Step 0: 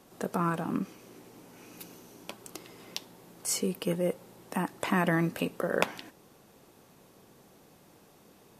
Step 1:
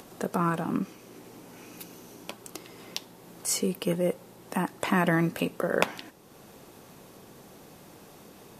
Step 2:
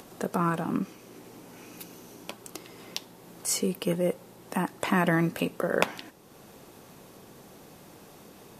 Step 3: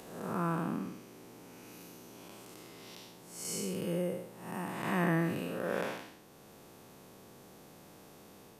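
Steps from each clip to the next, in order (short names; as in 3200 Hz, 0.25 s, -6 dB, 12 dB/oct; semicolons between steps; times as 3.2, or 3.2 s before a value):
upward compressor, threshold -45 dBFS; gain +2.5 dB
nothing audible
time blur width 0.228 s; gain -3 dB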